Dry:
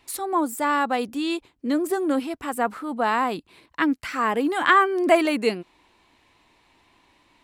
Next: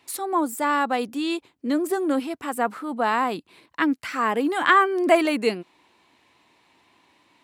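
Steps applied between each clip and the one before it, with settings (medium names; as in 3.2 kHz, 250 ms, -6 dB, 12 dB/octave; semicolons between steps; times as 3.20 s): high-pass 120 Hz 12 dB/octave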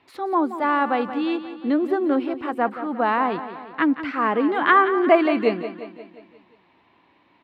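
distance through air 340 m; feedback delay 177 ms, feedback 55%, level -12 dB; trim +3 dB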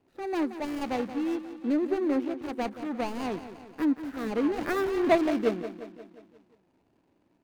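median filter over 41 samples; trim -4.5 dB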